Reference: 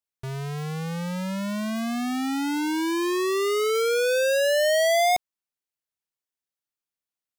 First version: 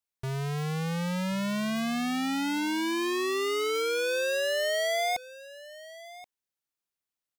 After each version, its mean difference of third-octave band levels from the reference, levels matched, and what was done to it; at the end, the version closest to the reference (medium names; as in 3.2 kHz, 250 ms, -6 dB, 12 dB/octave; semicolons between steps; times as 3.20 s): 5.5 dB: dynamic bell 2.8 kHz, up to +5 dB, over -39 dBFS, Q 0.73; compression 4:1, threshold -28 dBFS, peak gain reduction 9.5 dB; on a send: delay 1078 ms -18 dB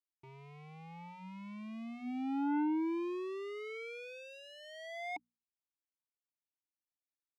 8.0 dB: vowel filter u; hum notches 60/120/180/240 Hz; transformer saturation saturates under 480 Hz; trim -2 dB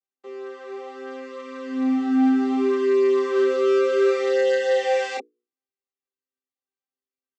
15.5 dB: vocoder on a held chord bare fifth, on C4; hum notches 60/120/180/240/300/360/420/480 Hz; chorus voices 2, 0.67 Hz, delay 25 ms, depth 2.5 ms; trim +6 dB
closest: first